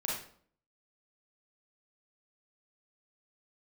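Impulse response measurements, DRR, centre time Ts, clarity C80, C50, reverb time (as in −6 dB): −5.0 dB, 50 ms, 6.5 dB, 1.0 dB, 0.55 s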